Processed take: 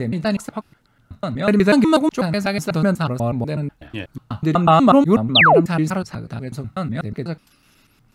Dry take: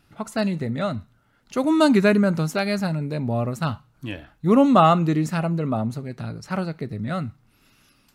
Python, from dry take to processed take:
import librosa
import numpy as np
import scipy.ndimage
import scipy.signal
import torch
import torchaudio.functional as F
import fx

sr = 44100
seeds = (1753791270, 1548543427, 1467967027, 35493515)

y = fx.block_reorder(x, sr, ms=123.0, group=6)
y = fx.spec_paint(y, sr, seeds[0], shape='fall', start_s=5.35, length_s=0.26, low_hz=280.0, high_hz=4200.0, level_db=-14.0)
y = y * librosa.db_to_amplitude(3.0)